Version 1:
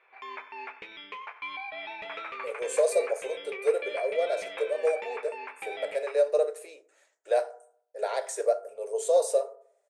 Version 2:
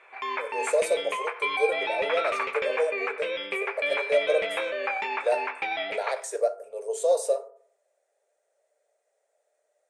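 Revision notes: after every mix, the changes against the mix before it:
speech: entry -2.05 s; background +9.5 dB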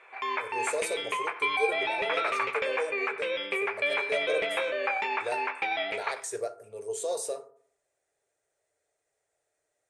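speech: remove resonant high-pass 560 Hz, resonance Q 3.9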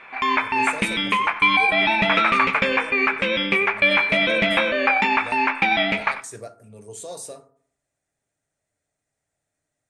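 background +11.5 dB; master: add resonant low shelf 310 Hz +10.5 dB, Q 3

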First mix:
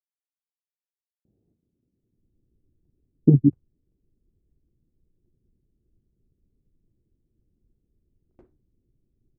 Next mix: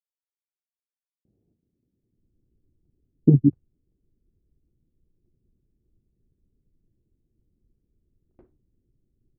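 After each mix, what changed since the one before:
master: add distance through air 200 m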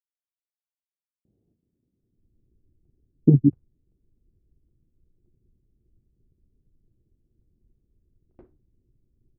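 background +4.0 dB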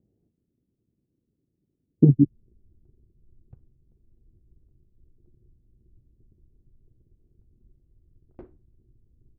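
speech: entry -1.25 s; background +7.0 dB

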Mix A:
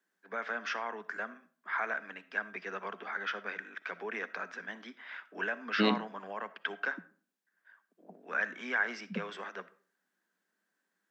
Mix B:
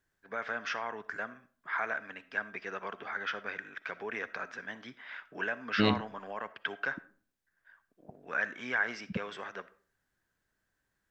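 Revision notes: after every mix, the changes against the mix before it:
master: remove Chebyshev high-pass 170 Hz, order 10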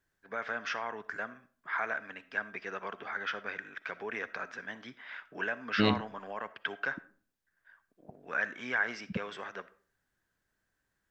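no change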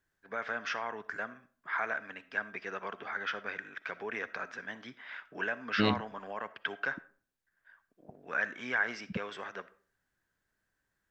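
second voice: send -9.0 dB

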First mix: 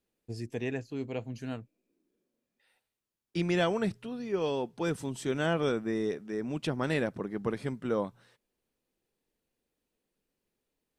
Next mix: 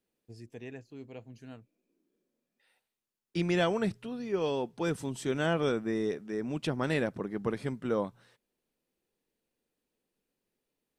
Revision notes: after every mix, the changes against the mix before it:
first voice -10.0 dB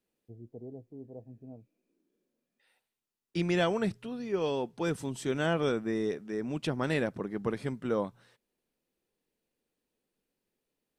first voice: add steep low-pass 750 Hz 36 dB/octave

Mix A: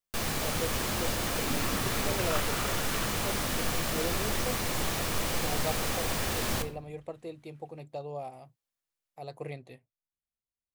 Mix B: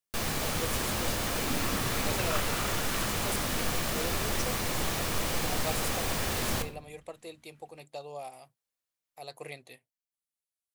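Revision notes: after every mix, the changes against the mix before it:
speech: add tilt EQ +3.5 dB/octave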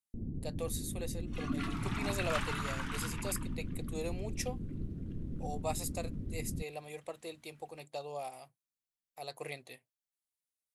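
first sound: add inverse Chebyshev low-pass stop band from 1.7 kHz, stop band 80 dB; reverb: off

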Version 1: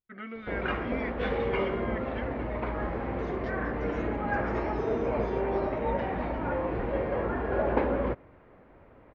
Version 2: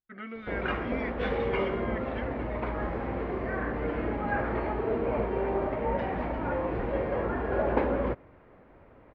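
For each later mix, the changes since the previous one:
second voice: muted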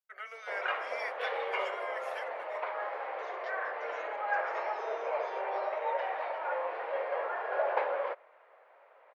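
first voice: remove Chebyshev low-pass 3.9 kHz, order 4; second voice: unmuted; master: add steep high-pass 540 Hz 36 dB/octave

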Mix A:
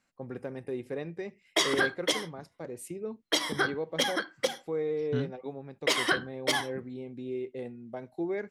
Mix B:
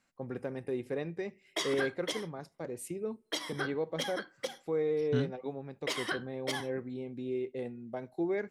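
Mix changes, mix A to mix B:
second voice: remove distance through air 67 m; background -8.5 dB; reverb: on, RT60 2.0 s

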